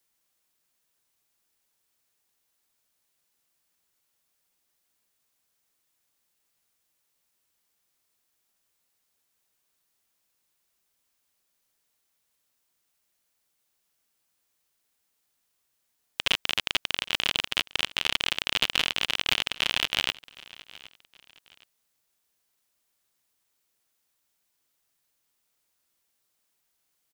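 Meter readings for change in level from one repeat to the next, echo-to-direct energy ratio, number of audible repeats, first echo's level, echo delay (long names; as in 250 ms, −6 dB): −9.5 dB, −20.5 dB, 2, −21.0 dB, 766 ms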